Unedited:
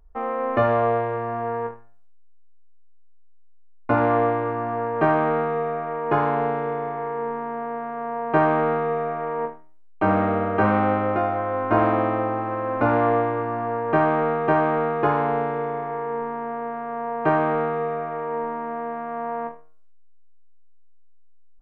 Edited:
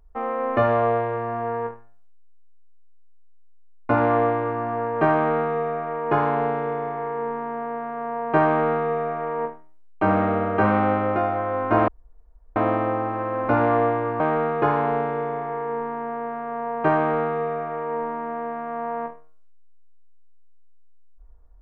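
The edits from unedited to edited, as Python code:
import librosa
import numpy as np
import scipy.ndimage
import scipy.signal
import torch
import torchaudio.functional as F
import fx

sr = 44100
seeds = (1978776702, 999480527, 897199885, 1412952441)

y = fx.edit(x, sr, fx.insert_room_tone(at_s=11.88, length_s=0.68),
    fx.cut(start_s=13.52, length_s=1.09), tone=tone)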